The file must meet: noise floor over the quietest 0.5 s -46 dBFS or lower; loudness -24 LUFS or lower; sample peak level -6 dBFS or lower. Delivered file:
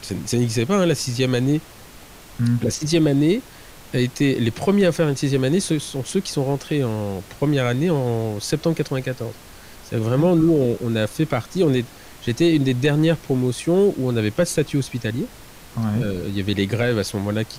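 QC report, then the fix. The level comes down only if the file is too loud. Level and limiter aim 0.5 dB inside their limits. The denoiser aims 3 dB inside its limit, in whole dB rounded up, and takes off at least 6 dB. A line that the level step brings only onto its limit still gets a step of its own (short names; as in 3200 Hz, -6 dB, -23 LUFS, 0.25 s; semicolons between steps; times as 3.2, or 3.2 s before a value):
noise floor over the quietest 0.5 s -43 dBFS: fail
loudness -21.0 LUFS: fail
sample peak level -8.5 dBFS: OK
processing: gain -3.5 dB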